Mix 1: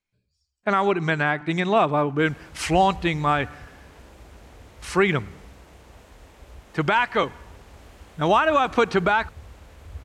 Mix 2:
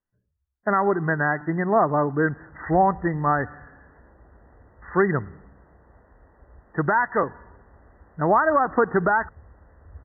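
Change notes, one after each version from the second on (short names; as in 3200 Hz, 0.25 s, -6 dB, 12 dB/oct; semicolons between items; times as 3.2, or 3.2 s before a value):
background -5.5 dB; master: add brick-wall FIR low-pass 2000 Hz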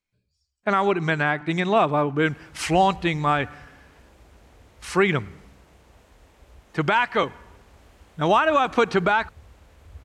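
master: remove brick-wall FIR low-pass 2000 Hz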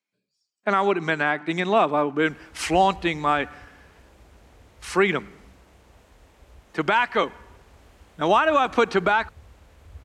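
speech: add HPF 190 Hz 24 dB/oct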